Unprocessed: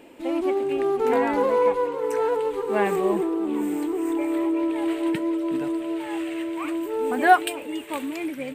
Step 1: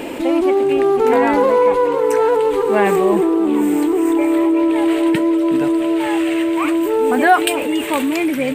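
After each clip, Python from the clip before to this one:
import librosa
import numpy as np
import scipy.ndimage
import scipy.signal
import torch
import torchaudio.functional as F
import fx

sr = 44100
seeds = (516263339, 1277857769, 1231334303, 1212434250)

y = fx.env_flatten(x, sr, amount_pct=50)
y = F.gain(torch.from_numpy(y), 2.5).numpy()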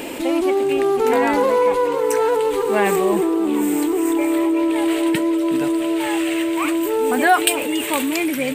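y = fx.high_shelf(x, sr, hz=3200.0, db=9.5)
y = F.gain(torch.from_numpy(y), -3.5).numpy()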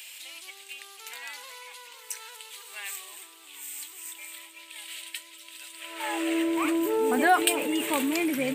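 y = fx.filter_sweep_highpass(x, sr, from_hz=3300.0, to_hz=130.0, start_s=5.7, end_s=6.52, q=1.0)
y = F.gain(torch.from_numpy(y), -6.5).numpy()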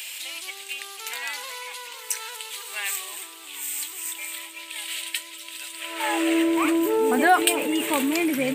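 y = fx.rider(x, sr, range_db=3, speed_s=2.0)
y = F.gain(torch.from_numpy(y), 5.5).numpy()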